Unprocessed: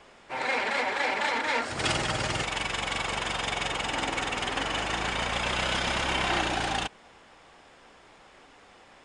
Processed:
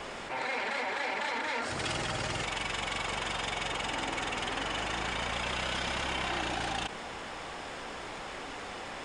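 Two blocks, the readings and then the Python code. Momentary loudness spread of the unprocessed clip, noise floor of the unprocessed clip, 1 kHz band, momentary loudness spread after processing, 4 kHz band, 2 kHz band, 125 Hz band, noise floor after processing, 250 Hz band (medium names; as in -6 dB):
3 LU, -55 dBFS, -4.5 dB, 8 LU, -4.5 dB, -4.5 dB, -4.5 dB, -42 dBFS, -4.0 dB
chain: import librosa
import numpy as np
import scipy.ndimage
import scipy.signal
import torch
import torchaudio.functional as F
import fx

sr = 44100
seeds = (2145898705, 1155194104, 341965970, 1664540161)

y = fx.env_flatten(x, sr, amount_pct=70)
y = y * 10.0 ** (-7.5 / 20.0)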